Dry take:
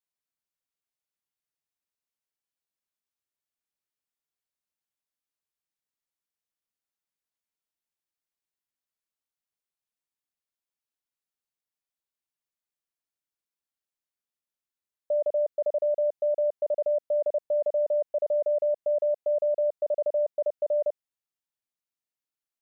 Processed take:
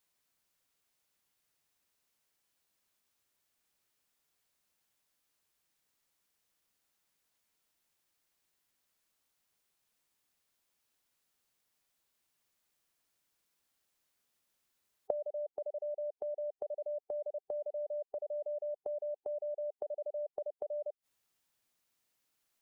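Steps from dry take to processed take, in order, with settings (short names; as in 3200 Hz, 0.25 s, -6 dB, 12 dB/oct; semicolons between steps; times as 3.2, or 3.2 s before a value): spectral gate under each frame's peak -30 dB strong; flipped gate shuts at -30 dBFS, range -25 dB; gain +12 dB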